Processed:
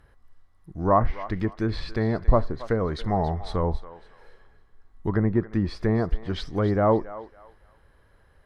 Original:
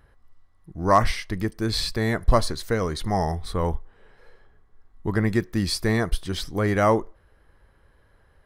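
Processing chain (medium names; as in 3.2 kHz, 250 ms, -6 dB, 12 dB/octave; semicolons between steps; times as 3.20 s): low-pass that closes with the level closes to 1 kHz, closed at -19 dBFS; thinning echo 278 ms, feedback 31%, high-pass 730 Hz, level -13 dB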